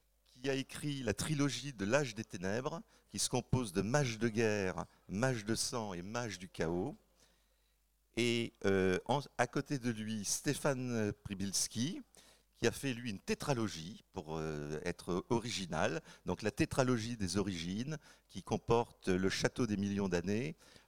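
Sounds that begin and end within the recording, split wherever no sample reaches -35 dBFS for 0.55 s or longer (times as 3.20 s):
8.17–11.91 s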